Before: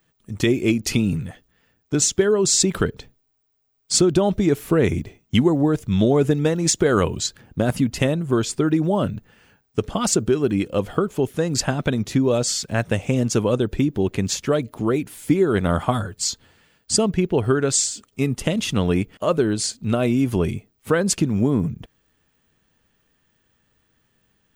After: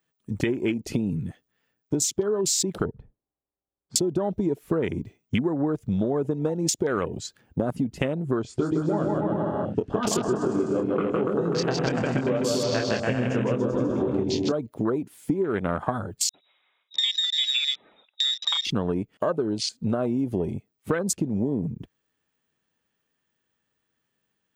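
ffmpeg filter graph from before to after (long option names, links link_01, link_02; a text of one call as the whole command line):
ffmpeg -i in.wav -filter_complex "[0:a]asettb=1/sr,asplit=3[link_01][link_02][link_03];[link_01]atrim=end=2.854[link_04];[link_02]atrim=start=2.85:end=3.96,asetpts=PTS-STARTPTS,afade=type=in:duration=0.004:curve=qsin,afade=type=out:start_time=1.106:duration=0.004:curve=qsin,lowpass=1100,lowshelf=frequency=89:gain=10[link_05];[link_03]atrim=start=3.956[link_06];[link_04][link_05]acrossfade=duration=0.004:curve1=hsin:curve2=qsin[link_07];[link_07][link_06]acrossfade=duration=0.004:curve1=qsin:curve2=hsin,asettb=1/sr,asplit=3[link_08][link_09][link_10];[link_08]atrim=end=8.424[link_11];[link_09]atrim=start=8.42:end=14.52,asetpts=PTS-STARTPTS,afade=type=in:duration=0.004:curve=qsin,afade=type=out:start_time=6.096:duration=0.004:curve=qsin,lowpass=6700,asplit=2[link_12][link_13];[link_13]adelay=24,volume=-5dB[link_14];[link_12][link_14]amix=inputs=2:normalize=0,atrim=end_sample=269010,aecho=1:1:160|288|390.4|472.3|537.9|590.3|632.2|665.8:0.794|0.631|0.501|0.398|0.316|0.251|0.2|0.158,atrim=end_sample=269010[link_15];[link_10]atrim=start=14.516[link_16];[link_11][link_15]acrossfade=duration=0.004:curve1=hsin:curve2=qsin[link_17];[link_17][link_16]acrossfade=duration=0.004:curve1=qsin:curve2=hsin,asettb=1/sr,asplit=3[link_18][link_19][link_20];[link_18]atrim=end=16.294[link_21];[link_19]atrim=start=16.29:end=18.65,asetpts=PTS-STARTPTS,afade=type=in:duration=0.004:curve=qsin,afade=type=out:start_time=2.356:duration=0.004:curve=qsin,acrossover=split=290[link_22][link_23];[link_23]adelay=50[link_24];[link_22][link_24]amix=inputs=2:normalize=0,atrim=end_sample=104076,lowpass=frequency=3300:width_type=q:width=0.5098,lowpass=frequency=3300:width_type=q:width=0.6013,lowpass=frequency=3300:width_type=q:width=0.9,lowpass=frequency=3300:width_type=q:width=2.563,afreqshift=-3900[link_25];[link_20]atrim=start=18.646[link_26];[link_21][link_25]acrossfade=duration=0.004:curve1=hsin:curve2=qsin[link_27];[link_27][link_26]acrossfade=duration=0.004:curve1=qsin:curve2=hsin,afwtdn=0.0398,highpass=frequency=210:poles=1,acompressor=threshold=-29dB:ratio=6,volume=6.5dB" out.wav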